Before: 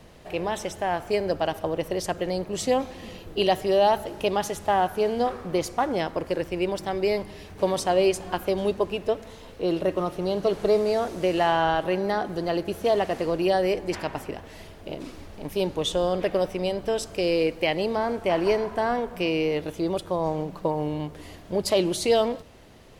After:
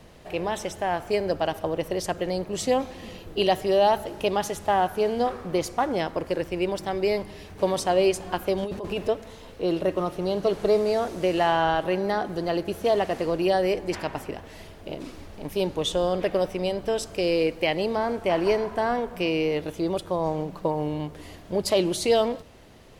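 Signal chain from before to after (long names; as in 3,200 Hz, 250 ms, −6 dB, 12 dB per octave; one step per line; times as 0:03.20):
0:08.63–0:09.08: compressor whose output falls as the input rises −29 dBFS, ratio −1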